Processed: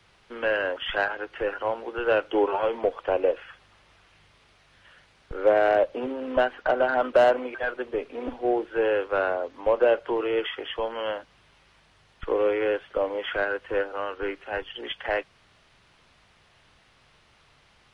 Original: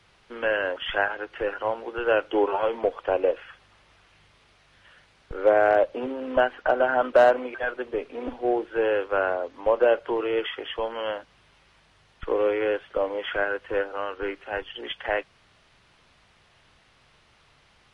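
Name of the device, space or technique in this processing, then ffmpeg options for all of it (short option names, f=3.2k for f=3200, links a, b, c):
one-band saturation: -filter_complex "[0:a]acrossover=split=590|2000[a][b][c];[b]asoftclip=type=tanh:threshold=-18.5dB[d];[a][d][c]amix=inputs=3:normalize=0"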